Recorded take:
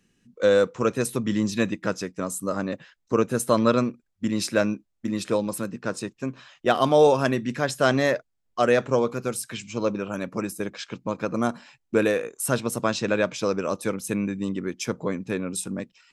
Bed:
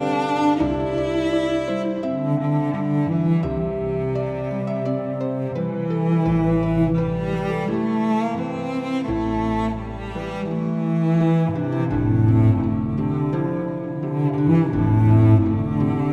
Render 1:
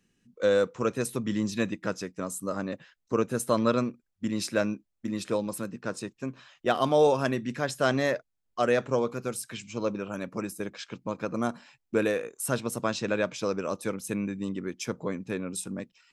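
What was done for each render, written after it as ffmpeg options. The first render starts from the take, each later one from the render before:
-af "volume=-4.5dB"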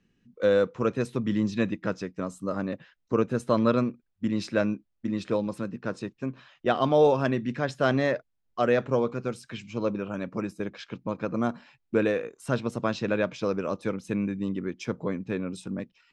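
-af "lowpass=4.2k,lowshelf=f=350:g=4"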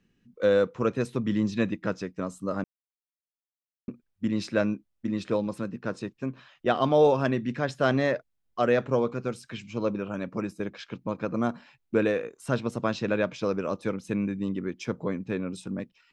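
-filter_complex "[0:a]asplit=3[a][b][c];[a]atrim=end=2.64,asetpts=PTS-STARTPTS,afade=t=out:st=2.636:d=0.004:c=hsin[d];[b]atrim=start=2.64:end=3.88,asetpts=PTS-STARTPTS,volume=0[e];[c]atrim=start=3.88,asetpts=PTS-STARTPTS,afade=t=in:d=0.004:c=hsin[f];[d][e][f]concat=n=3:v=0:a=1"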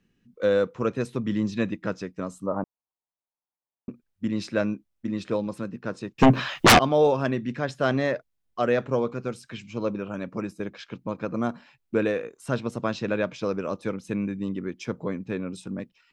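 -filter_complex "[0:a]asettb=1/sr,asplit=3[a][b][c];[a]atrim=end=2.464[d];[b]atrim=start=2.46:end=3.89,asetpts=PTS-STARTPTS,afade=t=in:d=0.004:c=qsin,afade=t=out:st=1.426:d=0.004:c=qsin,lowpass=f=920:t=q:w=2.7[e];[c]atrim=start=3.886[f];[d][e]acrossfade=d=0.004:c1=hsin:c2=qsin[g];[g][f]acrossfade=d=0.004:c1=qsin:c2=hsin,asettb=1/sr,asplit=3[h][i][j];[h]atrim=end=6.184[k];[i]atrim=start=6.18:end=6.79,asetpts=PTS-STARTPTS,afade=t=in:d=0.004:c=qsin,afade=t=out:st=0.606:d=0.004:c=qsin,aeval=exprs='0.335*sin(PI/2*8.91*val(0)/0.335)':c=same[l];[j]atrim=start=6.786[m];[k][l]acrossfade=d=0.004:c1=hsin:c2=qsin[n];[n][m]acrossfade=d=0.004:c1=qsin:c2=hsin"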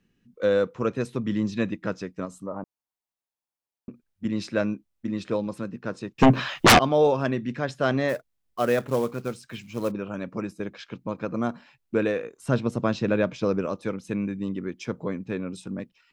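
-filter_complex "[0:a]asettb=1/sr,asplit=3[a][b][c];[a]atrim=end=2.254[d];[b]atrim=start=2.25:end=4.25,asetpts=PTS-STARTPTS,afade=t=in:d=0.004:c=qsin,afade=t=out:st=1.996:d=0.004:c=qsin,acompressor=threshold=-38dB:ratio=1.5:attack=3.2:release=140:knee=1:detection=peak[e];[c]atrim=start=4.246[f];[d][e]acrossfade=d=0.004:c1=hsin:c2=qsin[g];[g][f]acrossfade=d=0.004:c1=qsin:c2=hsin,asplit=3[h][i][j];[h]afade=t=out:st=8.08:d=0.02[k];[i]acrusher=bits=5:mode=log:mix=0:aa=0.000001,afade=t=in:st=8.08:d=0.02,afade=t=out:st=9.9:d=0.02[l];[j]afade=t=in:st=9.9:d=0.02[m];[k][l][m]amix=inputs=3:normalize=0,asettb=1/sr,asplit=3[n][o][p];[n]atrim=end=12.384[q];[o]atrim=start=12.38:end=13.66,asetpts=PTS-STARTPTS,afade=t=in:d=0.004:c=qsin,afade=t=out:st=1.276:d=0.004:c=qsin,lowshelf=f=490:g=5.5[r];[p]atrim=start=13.656[s];[q][r]acrossfade=d=0.004:c1=hsin:c2=qsin[t];[t][s]acrossfade=d=0.004:c1=qsin:c2=hsin"

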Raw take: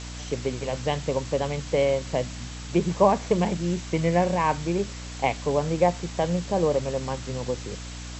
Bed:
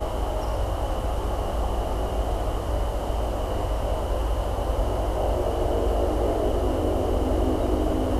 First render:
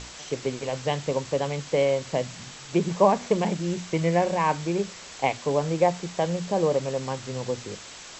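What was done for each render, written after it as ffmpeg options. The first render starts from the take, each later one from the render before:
-af "bandreject=f=60:t=h:w=6,bandreject=f=120:t=h:w=6,bandreject=f=180:t=h:w=6,bandreject=f=240:t=h:w=6,bandreject=f=300:t=h:w=6"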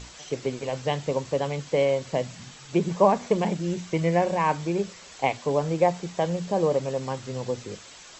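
-af "afftdn=nr=6:nf=-43"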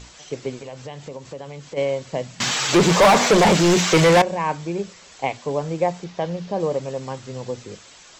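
-filter_complex "[0:a]asplit=3[a][b][c];[a]afade=t=out:st=0.61:d=0.02[d];[b]acompressor=threshold=-33dB:ratio=3:attack=3.2:release=140:knee=1:detection=peak,afade=t=in:st=0.61:d=0.02,afade=t=out:st=1.76:d=0.02[e];[c]afade=t=in:st=1.76:d=0.02[f];[d][e][f]amix=inputs=3:normalize=0,asettb=1/sr,asplit=3[g][h][i];[g]atrim=end=2.404[j];[h]atrim=start=2.4:end=4.22,asetpts=PTS-STARTPTS,afade=t=in:d=0.004:c=qsin,afade=t=out:st=1.816:d=0.004:c=qsin,asplit=2[k][l];[l]highpass=f=720:p=1,volume=33dB,asoftclip=type=tanh:threshold=-6dB[m];[k][m]amix=inputs=2:normalize=0,lowpass=f=6.3k:p=1,volume=-6dB[n];[i]atrim=start=4.216[o];[j][n]acrossfade=d=0.004:c1=hsin:c2=qsin[p];[p][o]acrossfade=d=0.004:c1=qsin:c2=hsin,asettb=1/sr,asplit=3[q][r][s];[q]atrim=end=6.044[t];[r]atrim=start=6.04:end=6.6,asetpts=PTS-STARTPTS,afade=t=in:d=0.004:c=qsin,afade=t=out:st=0.556:d=0.004:c=qsin,lowpass=f=5.9k:w=0.5412,lowpass=f=5.9k:w=1.3066[u];[s]atrim=start=6.596[v];[t][u]acrossfade=d=0.004:c1=hsin:c2=qsin[w];[w][v]acrossfade=d=0.004:c1=qsin:c2=hsin"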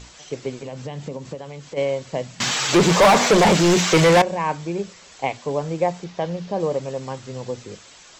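-filter_complex "[0:a]asettb=1/sr,asplit=3[a][b][c];[a]atrim=end=0.624[d];[b]atrim=start=0.62:end=1.35,asetpts=PTS-STARTPTS,afade=t=in:d=0.004:c=qsin,afade=t=out:st=0.726:d=0.004:c=qsin,equalizer=f=200:w=0.9:g=8.5[e];[c]atrim=start=1.346[f];[d][e]acrossfade=d=0.004:c1=hsin:c2=qsin[g];[g][f]acrossfade=d=0.004:c1=qsin:c2=hsin"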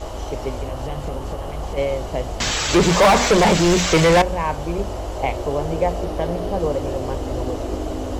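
-filter_complex "[1:a]volume=-2.5dB[a];[0:a][a]amix=inputs=2:normalize=0"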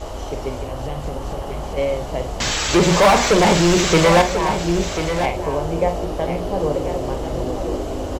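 -filter_complex "[0:a]asplit=2[a][b];[b]adelay=47,volume=-9.5dB[c];[a][c]amix=inputs=2:normalize=0,aecho=1:1:1040:0.376"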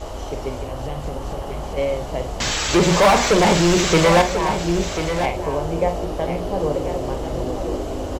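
-af "volume=-1dB"

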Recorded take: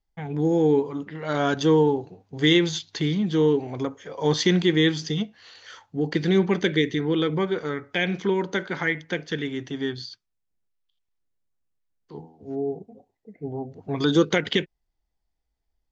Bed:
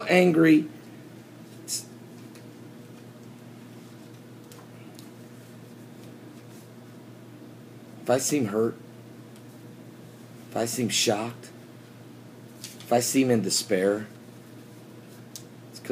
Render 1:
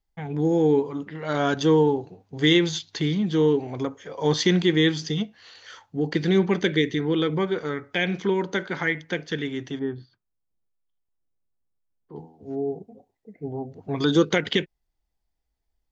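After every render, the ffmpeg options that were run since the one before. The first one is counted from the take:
-filter_complex "[0:a]asettb=1/sr,asplit=3[a][b][c];[a]atrim=end=9.794[d];[b]atrim=start=9.79:end=12.16,asetpts=PTS-STARTPTS,afade=t=in:d=0.004:c=qsin,afade=t=out:st=2.366:d=0.004:c=qsin,lowpass=1.1k[e];[c]atrim=start=12.156[f];[d][e]acrossfade=d=0.004:c1=hsin:c2=qsin[g];[g][f]acrossfade=d=0.004:c1=qsin:c2=hsin"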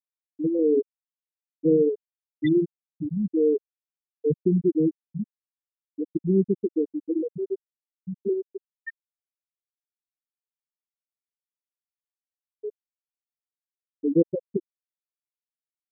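-af "afftfilt=real='re*gte(hypot(re,im),0.631)':imag='im*gte(hypot(re,im),0.631)':win_size=1024:overlap=0.75,lowpass=f=2.2k:p=1"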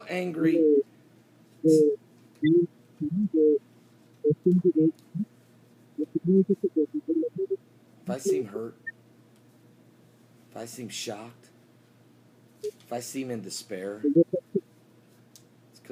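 -filter_complex "[1:a]volume=-11.5dB[a];[0:a][a]amix=inputs=2:normalize=0"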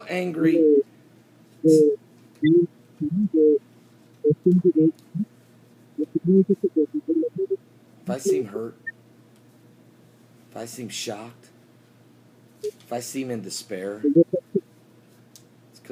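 -af "volume=4dB"

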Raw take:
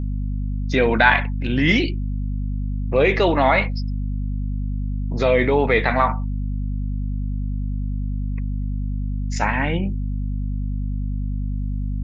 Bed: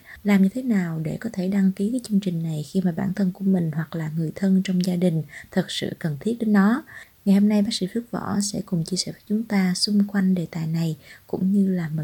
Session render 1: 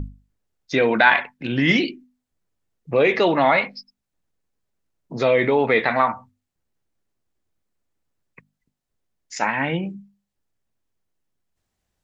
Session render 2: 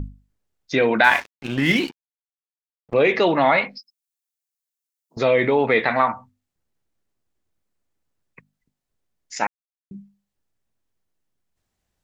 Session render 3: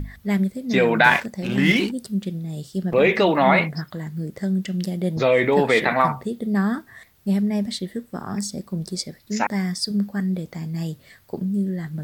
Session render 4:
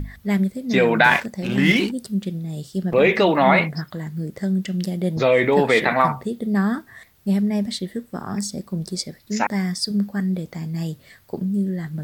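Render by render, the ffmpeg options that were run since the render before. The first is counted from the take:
-af "bandreject=f=50:t=h:w=6,bandreject=f=100:t=h:w=6,bandreject=f=150:t=h:w=6,bandreject=f=200:t=h:w=6,bandreject=f=250:t=h:w=6"
-filter_complex "[0:a]asettb=1/sr,asplit=3[a][b][c];[a]atrim=end=1.044[d];[b]atrim=start=1.04:end=2.94,asetpts=PTS-STARTPTS,afade=t=in:d=0.004:c=qsin,afade=t=out:st=1.896:d=0.004:c=qsin,aeval=exprs='sgn(val(0))*max(abs(val(0))-0.0211,0)':c=same[e];[c]atrim=start=2.936[f];[d][e]acrossfade=d=0.004:c1=hsin:c2=qsin[g];[g][f]acrossfade=d=0.004:c1=qsin:c2=hsin,asettb=1/sr,asplit=3[h][i][j];[h]atrim=end=3.784[k];[i]atrim=start=3.78:end=5.17,asetpts=PTS-STARTPTS,afade=t=in:d=0.004:c=qsin,afade=t=out:st=1.386:d=0.004:c=qsin,aderivative[l];[j]atrim=start=5.166[m];[k][l]acrossfade=d=0.004:c1=hsin:c2=qsin[n];[n][m]acrossfade=d=0.004:c1=qsin:c2=hsin,asplit=3[o][p][q];[o]atrim=end=9.47,asetpts=PTS-STARTPTS,afade=t=out:st=9.466:d=0.004:c=hsin[r];[p]atrim=start=9.47:end=9.91,asetpts=PTS-STARTPTS,volume=0[s];[q]atrim=start=9.91,asetpts=PTS-STARTPTS,afade=t=in:d=0.004:c=hsin[t];[r][s][t]concat=n=3:v=0:a=1"
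-filter_complex "[1:a]volume=-3.5dB[a];[0:a][a]amix=inputs=2:normalize=0"
-af "volume=1dB,alimiter=limit=-3dB:level=0:latency=1"

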